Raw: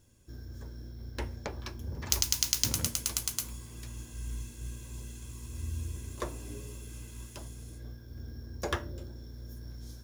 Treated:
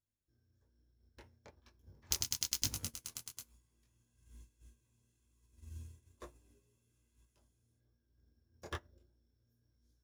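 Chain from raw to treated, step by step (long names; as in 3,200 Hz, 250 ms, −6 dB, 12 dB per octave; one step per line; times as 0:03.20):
chorus effect 1.1 Hz, delay 19.5 ms, depth 5.6 ms
expander for the loud parts 2.5 to 1, over −46 dBFS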